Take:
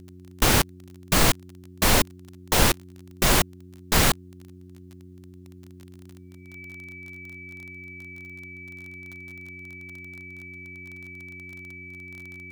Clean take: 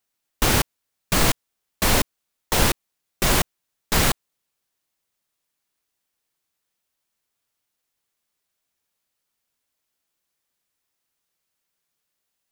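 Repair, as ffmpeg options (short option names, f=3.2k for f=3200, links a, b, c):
-af "adeclick=t=4,bandreject=f=90.8:t=h:w=4,bandreject=f=181.6:t=h:w=4,bandreject=f=272.4:t=h:w=4,bandreject=f=363.2:t=h:w=4,bandreject=f=2.3k:w=30"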